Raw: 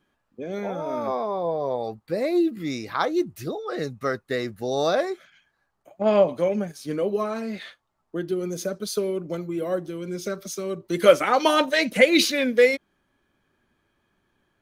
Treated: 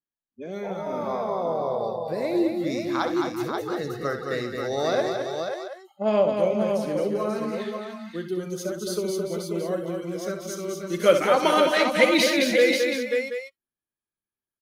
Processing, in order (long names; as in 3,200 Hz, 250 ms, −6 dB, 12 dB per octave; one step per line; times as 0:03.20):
multi-tap delay 66/216/264/396/536/728 ms −9/−5/−15.5/−12/−5.5/−12 dB
noise reduction from a noise print of the clip's start 28 dB
level −3 dB